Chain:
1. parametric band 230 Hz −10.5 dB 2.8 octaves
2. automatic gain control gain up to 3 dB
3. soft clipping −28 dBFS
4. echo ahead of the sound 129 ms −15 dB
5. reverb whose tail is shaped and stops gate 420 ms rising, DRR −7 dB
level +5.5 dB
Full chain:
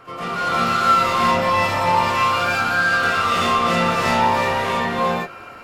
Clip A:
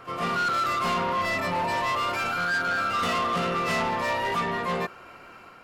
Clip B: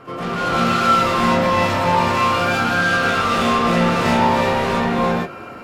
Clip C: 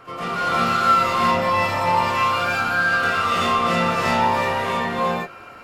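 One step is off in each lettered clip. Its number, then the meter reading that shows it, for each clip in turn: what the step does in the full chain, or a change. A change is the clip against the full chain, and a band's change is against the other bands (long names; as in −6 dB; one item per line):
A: 5, change in momentary loudness spread −2 LU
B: 1, 250 Hz band +6.0 dB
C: 2, 8 kHz band −2.0 dB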